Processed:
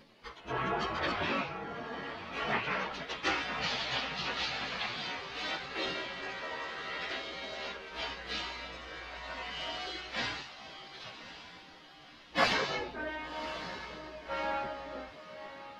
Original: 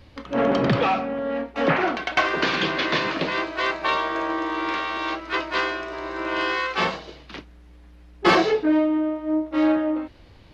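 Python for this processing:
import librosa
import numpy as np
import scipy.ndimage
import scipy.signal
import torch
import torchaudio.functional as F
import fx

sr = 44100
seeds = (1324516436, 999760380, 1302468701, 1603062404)

y = fx.spec_gate(x, sr, threshold_db=-10, keep='weak')
y = fx.echo_diffused(y, sr, ms=736, feedback_pct=43, wet_db=-11)
y = fx.stretch_vocoder_free(y, sr, factor=1.5)
y = F.gain(torch.from_numpy(y), -3.0).numpy()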